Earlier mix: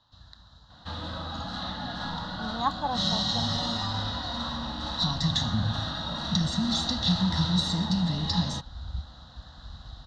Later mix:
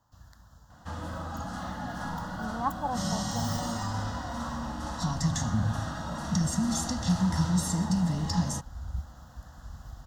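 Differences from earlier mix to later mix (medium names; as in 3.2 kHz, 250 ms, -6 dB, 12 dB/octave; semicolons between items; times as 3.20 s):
speech: add distance through air 430 m; master: remove resonant low-pass 3.9 kHz, resonance Q 11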